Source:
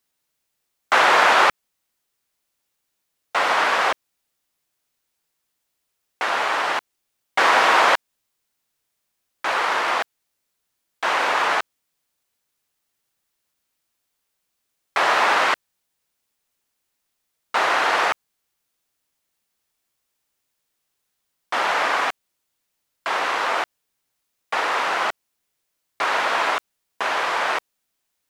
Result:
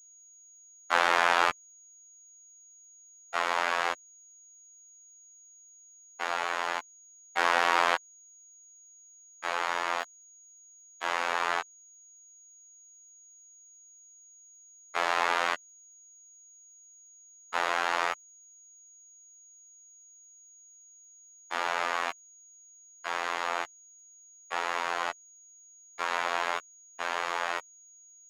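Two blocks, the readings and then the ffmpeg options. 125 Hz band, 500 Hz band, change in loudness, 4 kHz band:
can't be measured, −9.5 dB, −9.5 dB, −9.5 dB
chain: -af "afftfilt=real='hypot(re,im)*cos(PI*b)':imag='0':win_size=2048:overlap=0.75,aeval=exprs='val(0)+0.00447*sin(2*PI*6700*n/s)':channel_layout=same,volume=-6dB"

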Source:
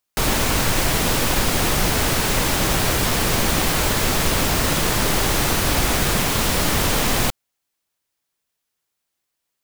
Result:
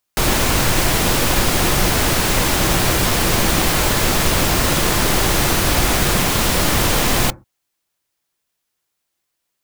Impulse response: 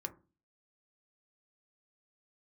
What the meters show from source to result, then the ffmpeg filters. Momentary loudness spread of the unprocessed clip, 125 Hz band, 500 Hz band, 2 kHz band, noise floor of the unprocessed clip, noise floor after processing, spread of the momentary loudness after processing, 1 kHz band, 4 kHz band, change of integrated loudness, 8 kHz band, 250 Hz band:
0 LU, +3.0 dB, +3.0 dB, +3.0 dB, −79 dBFS, −76 dBFS, 0 LU, +3.0 dB, +3.0 dB, +3.0 dB, +3.0 dB, +3.0 dB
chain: -filter_complex "[0:a]asplit=2[link_01][link_02];[1:a]atrim=start_sample=2205,atrim=end_sample=6174[link_03];[link_02][link_03]afir=irnorm=-1:irlink=0,volume=-5.5dB[link_04];[link_01][link_04]amix=inputs=2:normalize=0"

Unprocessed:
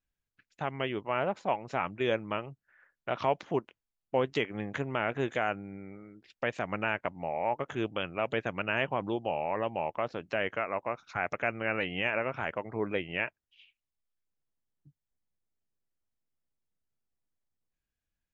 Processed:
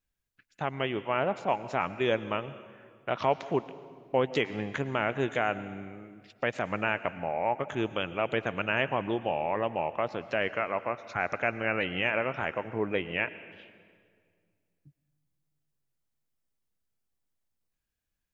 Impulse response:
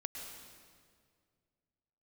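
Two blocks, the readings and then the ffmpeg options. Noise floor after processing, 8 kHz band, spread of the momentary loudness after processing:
−83 dBFS, can't be measured, 8 LU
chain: -filter_complex "[0:a]asplit=2[link_01][link_02];[1:a]atrim=start_sample=2205,highshelf=frequency=6000:gain=9[link_03];[link_02][link_03]afir=irnorm=-1:irlink=0,volume=-8.5dB[link_04];[link_01][link_04]amix=inputs=2:normalize=0"

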